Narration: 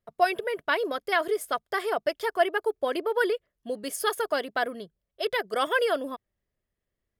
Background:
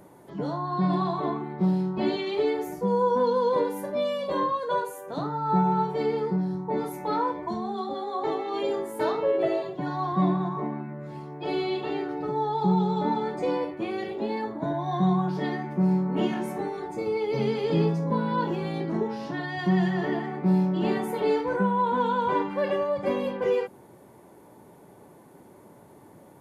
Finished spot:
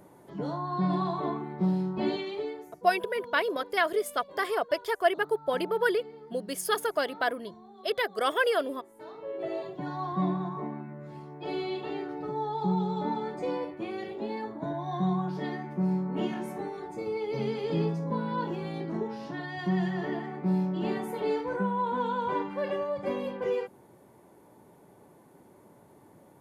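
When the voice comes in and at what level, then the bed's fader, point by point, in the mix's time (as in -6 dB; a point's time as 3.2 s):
2.65 s, -1.0 dB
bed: 2.16 s -3 dB
2.88 s -20 dB
9.04 s -20 dB
9.63 s -5 dB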